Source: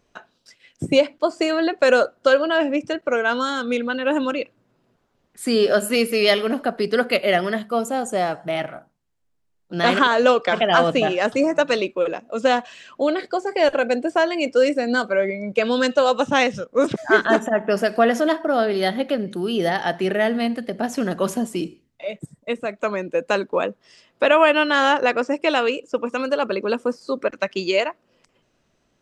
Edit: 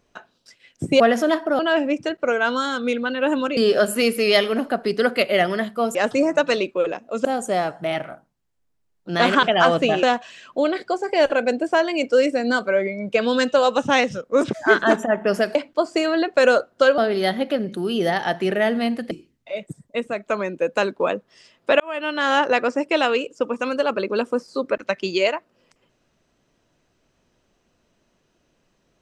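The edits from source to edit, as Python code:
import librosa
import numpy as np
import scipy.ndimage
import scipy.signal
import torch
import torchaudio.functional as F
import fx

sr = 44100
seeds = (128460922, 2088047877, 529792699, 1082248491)

y = fx.edit(x, sr, fx.swap(start_s=1.0, length_s=1.43, other_s=17.98, other_length_s=0.59),
    fx.cut(start_s=4.41, length_s=1.1),
    fx.cut(start_s=10.07, length_s=0.49),
    fx.move(start_s=11.16, length_s=1.3, to_s=7.89),
    fx.cut(start_s=20.7, length_s=0.94),
    fx.fade_in_span(start_s=24.33, length_s=0.63), tone=tone)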